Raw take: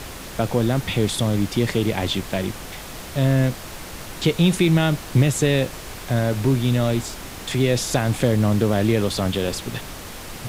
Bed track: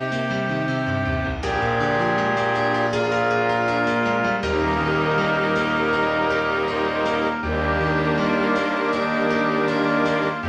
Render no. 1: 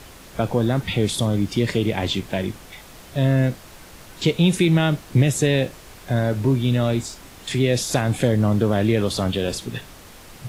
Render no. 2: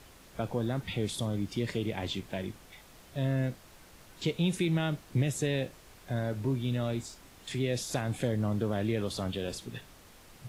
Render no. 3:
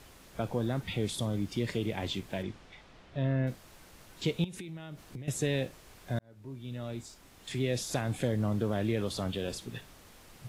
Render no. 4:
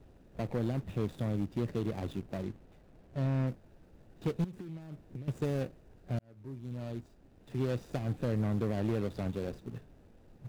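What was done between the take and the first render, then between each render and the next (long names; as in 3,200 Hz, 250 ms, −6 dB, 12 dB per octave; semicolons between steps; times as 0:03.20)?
noise reduction from a noise print 8 dB
level −11.5 dB
0:02.42–0:03.46: low-pass filter 5,700 Hz → 2,600 Hz; 0:04.44–0:05.28: downward compressor 16 to 1, threshold −38 dBFS; 0:06.19–0:07.68: fade in
running median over 41 samples; gain into a clipping stage and back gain 25 dB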